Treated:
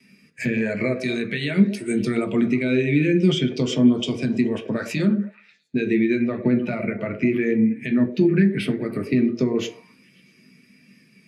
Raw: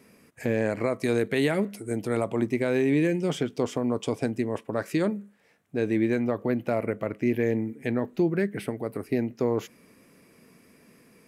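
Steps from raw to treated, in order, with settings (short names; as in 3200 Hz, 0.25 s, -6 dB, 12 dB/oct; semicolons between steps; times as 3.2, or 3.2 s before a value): weighting filter D; gate with hold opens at -47 dBFS; bell 620 Hz -7 dB 2.4 oct; compressor 6:1, threshold -31 dBFS, peak gain reduction 12 dB; delay with a stepping band-pass 0.108 s, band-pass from 440 Hz, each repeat 0.7 oct, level -6.5 dB; on a send at -2.5 dB: reverb RT60 0.40 s, pre-delay 3 ms; on the sum: maximiser +21 dB; spectral expander 1.5:1; gain -5.5 dB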